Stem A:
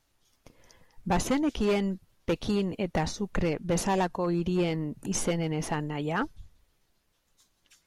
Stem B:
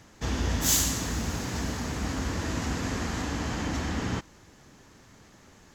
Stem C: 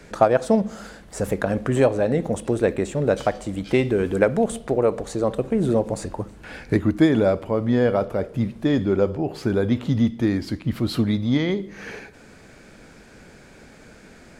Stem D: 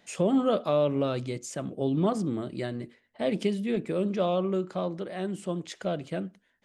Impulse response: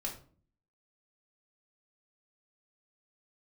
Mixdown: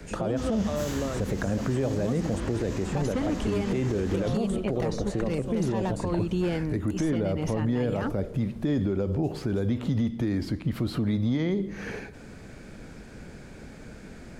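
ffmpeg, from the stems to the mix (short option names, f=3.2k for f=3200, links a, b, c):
-filter_complex "[0:a]adelay=1850,volume=2dB[a];[1:a]flanger=delay=20:depth=7.1:speed=0.42,adelay=150,volume=-0.5dB[b];[2:a]alimiter=limit=-12.5dB:level=0:latency=1:release=116,lowshelf=f=310:g=9,volume=-2dB[c];[3:a]volume=-3.5dB[d];[a][b][c][d]amix=inputs=4:normalize=0,acrossover=split=370|2400|4800[e][f][g][h];[e]acompressor=threshold=-23dB:ratio=4[i];[f]acompressor=threshold=-29dB:ratio=4[j];[g]acompressor=threshold=-49dB:ratio=4[k];[h]acompressor=threshold=-48dB:ratio=4[l];[i][j][k][l]amix=inputs=4:normalize=0,alimiter=limit=-18.5dB:level=0:latency=1:release=48"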